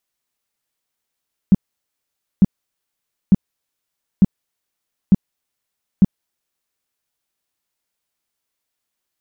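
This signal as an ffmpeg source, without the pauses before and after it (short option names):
-f lavfi -i "aevalsrc='0.562*sin(2*PI*193*mod(t,0.9))*lt(mod(t,0.9),5/193)':d=5.4:s=44100"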